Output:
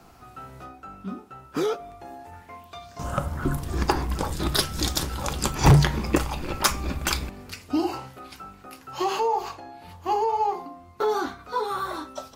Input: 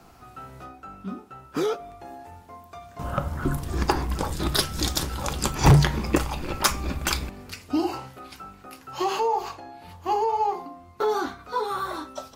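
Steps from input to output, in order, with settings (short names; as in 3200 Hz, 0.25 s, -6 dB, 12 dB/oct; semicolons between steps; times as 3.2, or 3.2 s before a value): 2.32–3.25 bell 1500 Hz -> 9600 Hz +11.5 dB 0.85 oct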